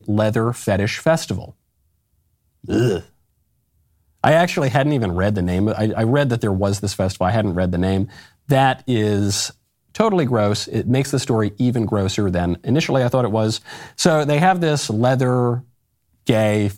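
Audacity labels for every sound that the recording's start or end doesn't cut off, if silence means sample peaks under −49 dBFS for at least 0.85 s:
2.640000	3.120000	sound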